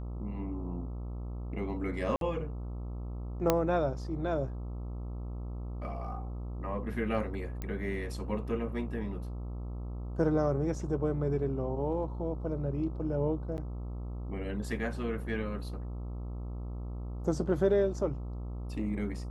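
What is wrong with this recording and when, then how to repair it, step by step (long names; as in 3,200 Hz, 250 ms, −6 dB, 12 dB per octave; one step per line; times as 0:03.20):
mains buzz 60 Hz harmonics 22 −38 dBFS
0:02.16–0:02.21: drop-out 52 ms
0:03.50: click −10 dBFS
0:07.62: click −23 dBFS
0:13.57–0:13.58: drop-out 9.8 ms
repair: click removal
hum removal 60 Hz, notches 22
repair the gap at 0:02.16, 52 ms
repair the gap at 0:13.57, 9.8 ms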